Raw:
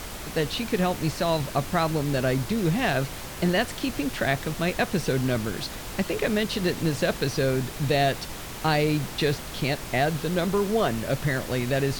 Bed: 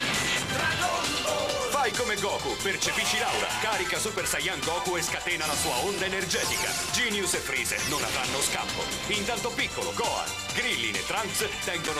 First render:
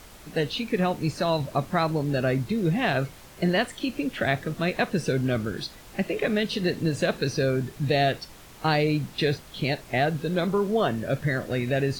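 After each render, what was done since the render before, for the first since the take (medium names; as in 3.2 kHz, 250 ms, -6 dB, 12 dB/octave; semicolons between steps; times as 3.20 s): noise print and reduce 11 dB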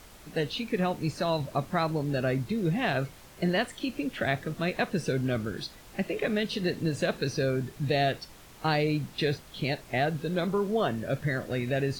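trim -3.5 dB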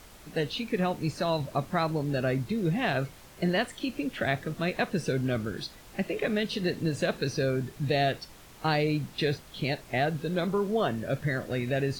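no audible change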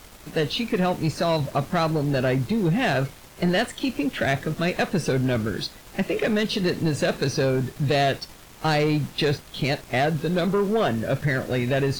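waveshaping leveller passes 2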